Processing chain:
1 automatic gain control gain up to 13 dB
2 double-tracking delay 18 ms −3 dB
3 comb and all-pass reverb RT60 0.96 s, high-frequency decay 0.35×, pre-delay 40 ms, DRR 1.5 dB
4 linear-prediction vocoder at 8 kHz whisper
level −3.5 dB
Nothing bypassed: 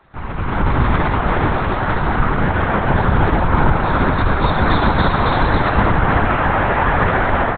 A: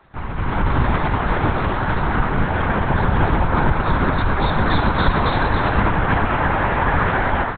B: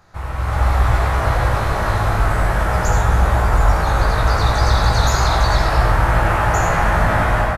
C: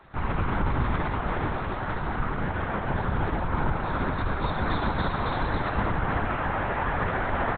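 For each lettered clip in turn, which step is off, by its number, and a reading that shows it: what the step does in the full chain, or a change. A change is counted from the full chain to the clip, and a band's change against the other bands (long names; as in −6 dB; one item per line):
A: 3, change in integrated loudness −2.5 LU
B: 4, 250 Hz band −6.0 dB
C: 1, change in integrated loudness −11.5 LU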